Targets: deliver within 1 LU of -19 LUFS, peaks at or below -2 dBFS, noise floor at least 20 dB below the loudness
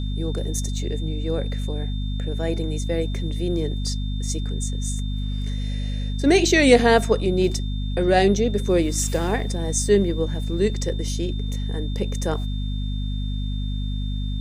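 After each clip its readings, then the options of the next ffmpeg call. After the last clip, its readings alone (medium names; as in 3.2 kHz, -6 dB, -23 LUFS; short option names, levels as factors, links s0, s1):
hum 50 Hz; highest harmonic 250 Hz; hum level -23 dBFS; steady tone 3.6 kHz; tone level -40 dBFS; loudness -23.5 LUFS; peak level -1.5 dBFS; loudness target -19.0 LUFS
-> -af "bandreject=f=50:t=h:w=4,bandreject=f=100:t=h:w=4,bandreject=f=150:t=h:w=4,bandreject=f=200:t=h:w=4,bandreject=f=250:t=h:w=4"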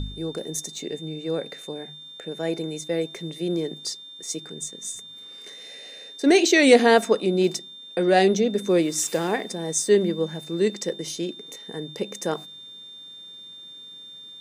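hum not found; steady tone 3.6 kHz; tone level -40 dBFS
-> -af "bandreject=f=3600:w=30"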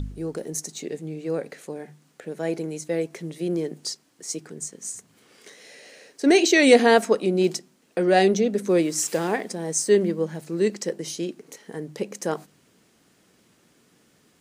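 steady tone not found; loudness -23.5 LUFS; peak level -1.5 dBFS; loudness target -19.0 LUFS
-> -af "volume=1.68,alimiter=limit=0.794:level=0:latency=1"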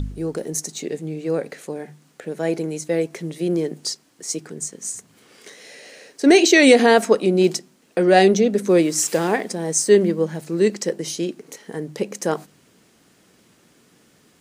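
loudness -19.5 LUFS; peak level -2.0 dBFS; noise floor -58 dBFS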